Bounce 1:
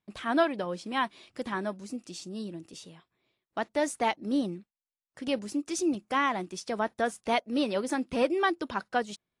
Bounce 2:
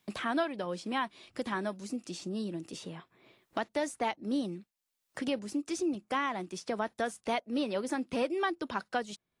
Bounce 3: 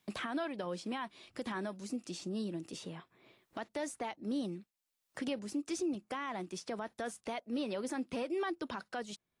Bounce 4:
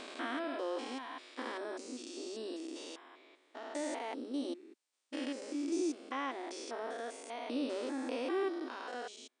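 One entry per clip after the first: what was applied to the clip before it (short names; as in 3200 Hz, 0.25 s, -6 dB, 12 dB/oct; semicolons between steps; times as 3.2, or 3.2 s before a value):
three-band squash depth 70%; gain -4 dB
limiter -26.5 dBFS, peak gain reduction 8 dB; gain -2 dB
stepped spectrum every 0.2 s; brick-wall FIR band-pass 240–9700 Hz; gain +5 dB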